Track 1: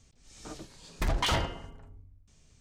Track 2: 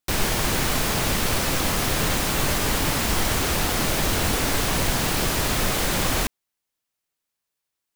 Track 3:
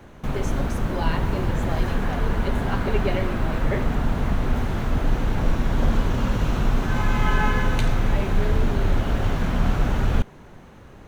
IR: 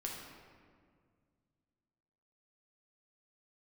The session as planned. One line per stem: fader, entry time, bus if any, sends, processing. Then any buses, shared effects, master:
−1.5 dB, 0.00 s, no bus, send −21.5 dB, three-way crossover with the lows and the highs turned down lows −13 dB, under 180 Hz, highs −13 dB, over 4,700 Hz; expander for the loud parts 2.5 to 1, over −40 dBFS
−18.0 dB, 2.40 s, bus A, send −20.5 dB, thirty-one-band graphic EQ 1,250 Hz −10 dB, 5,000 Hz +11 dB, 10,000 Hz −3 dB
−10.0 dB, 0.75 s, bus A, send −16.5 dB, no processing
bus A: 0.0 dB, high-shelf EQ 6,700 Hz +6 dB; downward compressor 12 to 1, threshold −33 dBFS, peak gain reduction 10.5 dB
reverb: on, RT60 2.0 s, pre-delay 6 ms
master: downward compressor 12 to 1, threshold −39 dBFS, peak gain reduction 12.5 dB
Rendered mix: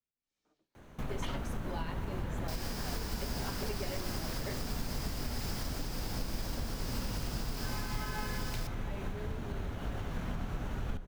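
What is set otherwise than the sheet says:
stem 1 −1.5 dB → −12.5 dB
master: missing downward compressor 12 to 1, threshold −39 dBFS, peak gain reduction 12.5 dB

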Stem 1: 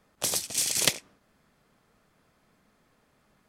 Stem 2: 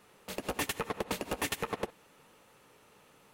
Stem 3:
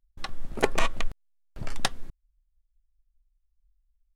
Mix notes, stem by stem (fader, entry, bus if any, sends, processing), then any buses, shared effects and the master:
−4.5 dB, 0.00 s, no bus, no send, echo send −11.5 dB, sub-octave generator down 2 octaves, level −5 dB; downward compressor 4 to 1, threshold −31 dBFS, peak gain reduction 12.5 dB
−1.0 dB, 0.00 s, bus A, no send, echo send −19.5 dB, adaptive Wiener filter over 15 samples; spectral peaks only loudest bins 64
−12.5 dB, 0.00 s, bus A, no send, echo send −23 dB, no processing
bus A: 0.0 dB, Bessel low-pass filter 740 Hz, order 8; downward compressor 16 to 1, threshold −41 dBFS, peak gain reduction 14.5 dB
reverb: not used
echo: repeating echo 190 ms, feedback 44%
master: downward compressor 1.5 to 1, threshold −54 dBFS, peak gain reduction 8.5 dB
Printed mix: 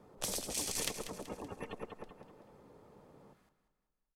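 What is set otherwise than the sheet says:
stem 2 −1.0 dB → +6.0 dB
stem 3 −12.5 dB → −19.5 dB
master: missing downward compressor 1.5 to 1, threshold −54 dBFS, peak gain reduction 8.5 dB

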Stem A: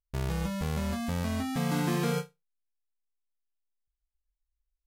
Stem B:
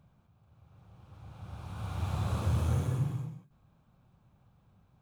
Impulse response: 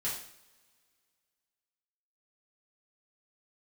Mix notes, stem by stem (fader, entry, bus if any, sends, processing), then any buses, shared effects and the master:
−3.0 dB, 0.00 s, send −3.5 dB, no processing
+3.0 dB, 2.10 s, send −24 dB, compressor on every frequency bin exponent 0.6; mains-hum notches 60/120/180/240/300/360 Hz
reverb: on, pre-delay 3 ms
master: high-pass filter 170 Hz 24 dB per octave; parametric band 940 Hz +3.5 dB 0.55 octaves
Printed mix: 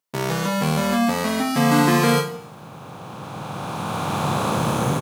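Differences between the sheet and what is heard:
stem A −3.0 dB → +8.5 dB
stem B +3.0 dB → +14.0 dB

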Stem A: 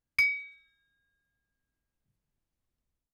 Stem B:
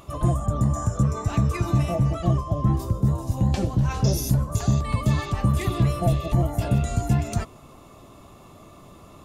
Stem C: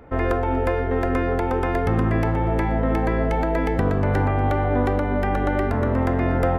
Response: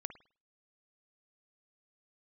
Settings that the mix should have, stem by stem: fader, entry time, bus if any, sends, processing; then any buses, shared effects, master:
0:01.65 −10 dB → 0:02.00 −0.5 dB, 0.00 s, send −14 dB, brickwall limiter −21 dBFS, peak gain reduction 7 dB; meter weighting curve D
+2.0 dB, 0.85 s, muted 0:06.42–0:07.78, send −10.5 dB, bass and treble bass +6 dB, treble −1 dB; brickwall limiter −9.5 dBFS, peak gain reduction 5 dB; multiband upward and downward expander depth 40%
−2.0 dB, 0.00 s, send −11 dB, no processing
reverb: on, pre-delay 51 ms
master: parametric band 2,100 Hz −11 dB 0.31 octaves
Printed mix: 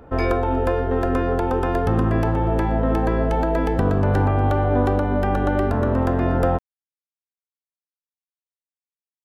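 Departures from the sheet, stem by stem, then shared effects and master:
stem B: muted
stem C: send −11 dB → −3.5 dB

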